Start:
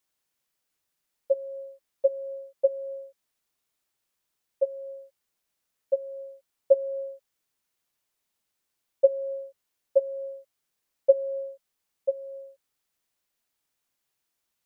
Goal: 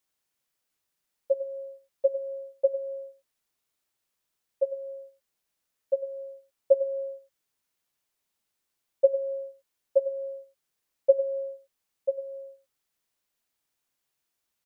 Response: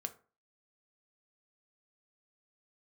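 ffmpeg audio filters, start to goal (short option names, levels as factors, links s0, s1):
-filter_complex "[0:a]asplit=2[s0][s1];[s1]adelay=99.13,volume=0.2,highshelf=f=4000:g=-2.23[s2];[s0][s2]amix=inputs=2:normalize=0,volume=0.891"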